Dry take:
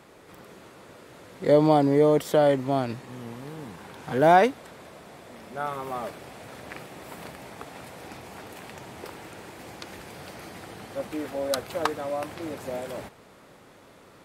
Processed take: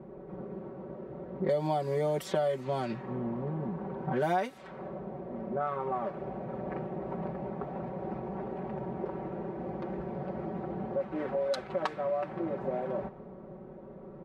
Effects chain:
low-pass that shuts in the quiet parts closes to 480 Hz, open at −18 dBFS
comb filter 5.3 ms, depth 94%
downward compressor 4 to 1, threshold −37 dBFS, peak gain reduction 23.5 dB
level +6 dB

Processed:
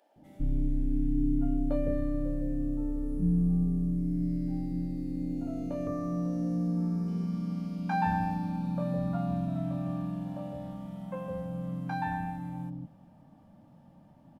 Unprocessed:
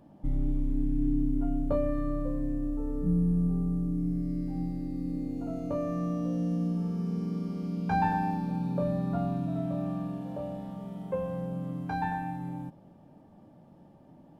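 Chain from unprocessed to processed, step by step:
parametric band 1,100 Hz −14.5 dB 0.34 octaves, from 0:05.87 3,000 Hz, from 0:07.08 380 Hz
multiband delay without the direct sound highs, lows 160 ms, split 520 Hz

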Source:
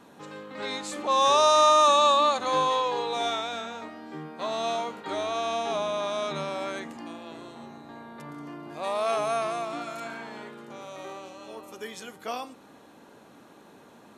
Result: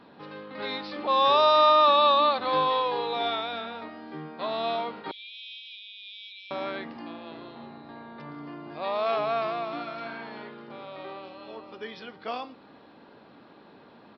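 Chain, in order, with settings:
0:05.11–0:06.51: Chebyshev high-pass with heavy ripple 2,300 Hz, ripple 6 dB
downsampling to 11,025 Hz

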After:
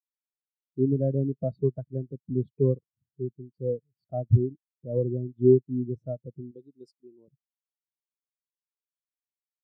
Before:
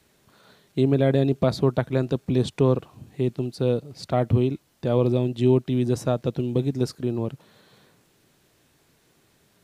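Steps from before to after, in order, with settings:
0:06.51–0:07.28: RIAA equalisation recording
every bin expanded away from the loudest bin 2.5 to 1

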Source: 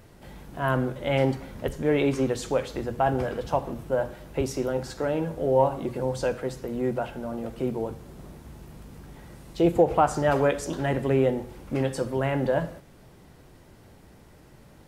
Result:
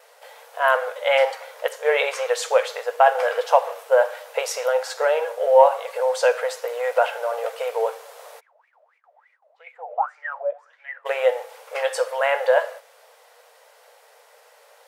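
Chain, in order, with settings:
speech leveller 2 s
dynamic equaliser 1,800 Hz, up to +4 dB, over −40 dBFS, Q 0.78
0:08.39–0:11.05: LFO wah 4.3 Hz → 1.2 Hz 590–2,300 Hz, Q 19
noise gate with hold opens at −60 dBFS
linear-phase brick-wall high-pass 440 Hz
level +6.5 dB

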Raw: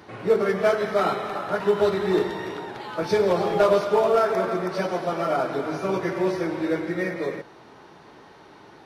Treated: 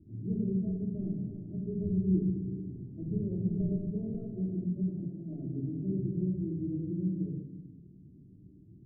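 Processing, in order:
inverse Chebyshev low-pass filter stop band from 990 Hz, stop band 70 dB
0:04.83–0:05.34: compressor whose output falls as the input rises −43 dBFS, ratio −1
rectangular room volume 2,500 cubic metres, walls furnished, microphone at 2.9 metres

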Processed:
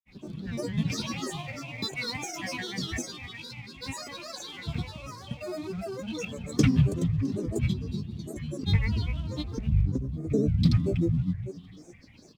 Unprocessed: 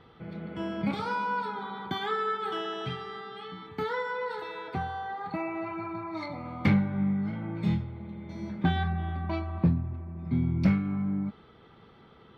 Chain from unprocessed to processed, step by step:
in parallel at −5.5 dB: dead-zone distortion −49 dBFS
on the sum: upward compression, threshold −45 dBFS
drawn EQ curve 320 Hz 0 dB, 520 Hz −16 dB, 2,100 Hz −16 dB, 3,800 Hz +11 dB
on a send: repeating echo 285 ms, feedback 23%, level −9 dB
on the sum: granular cloud, pitch spread up and down by 12 semitones
parametric band 1,100 Hz +5.5 dB 0.44 octaves
notch filter 2,900 Hz, Q 14
wow of a warped record 78 rpm, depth 100 cents

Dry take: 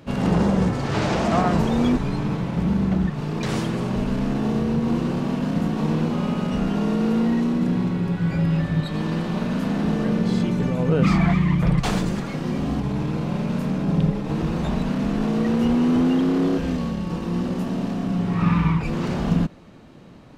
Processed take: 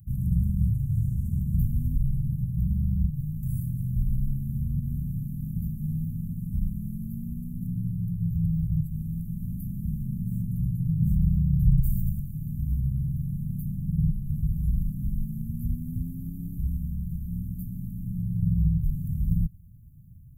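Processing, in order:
inverse Chebyshev band-stop filter 490–4,700 Hz, stop band 70 dB
high-shelf EQ 3,500 Hz +10 dB
level +5.5 dB

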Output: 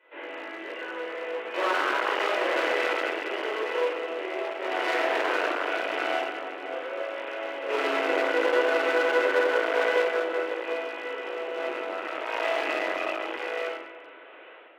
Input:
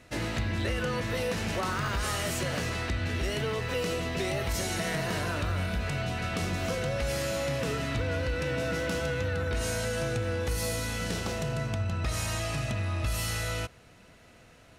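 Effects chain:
variable-slope delta modulation 16 kbit/s
sample-and-hold tremolo 1.3 Hz, depth 80%
in parallel at −4.5 dB: soft clipping −36 dBFS, distortion −8 dB
on the sum: rectangular room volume 980 cubic metres, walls mixed, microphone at 4.8 metres
asymmetric clip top −27 dBFS
elliptic high-pass filter 330 Hz, stop band 50 dB

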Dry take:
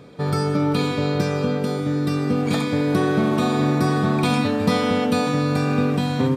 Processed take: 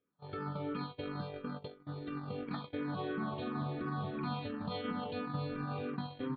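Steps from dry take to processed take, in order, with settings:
noise gate −19 dBFS, range −35 dB
0:03.33–0:05.66: low-shelf EQ 200 Hz +6 dB
downward compressor 6 to 1, threshold −27 dBFS, peak gain reduction 15 dB
brickwall limiter −22.5 dBFS, peak gain reduction 6.5 dB
Chebyshev low-pass with heavy ripple 4,400 Hz, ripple 6 dB
frequency shifter mixed with the dry sound −2.9 Hz
level +1.5 dB

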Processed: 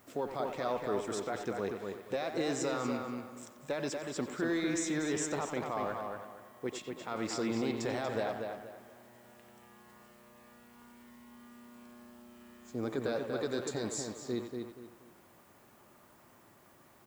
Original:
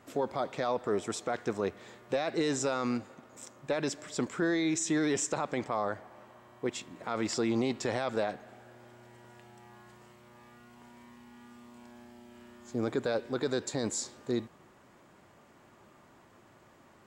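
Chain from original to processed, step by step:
far-end echo of a speakerphone 90 ms, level −6 dB
background noise blue −64 dBFS
on a send: feedback echo with a low-pass in the loop 238 ms, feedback 30%, low-pass 3,800 Hz, level −4.5 dB
on the sum: level −4.5 dB

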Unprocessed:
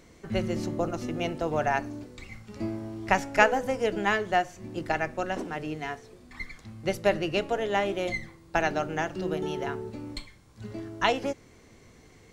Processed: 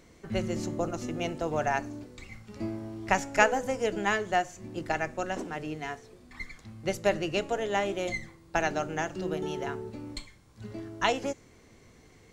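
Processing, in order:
dynamic equaliser 7,000 Hz, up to +8 dB, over −60 dBFS, Q 2.8
level −2 dB

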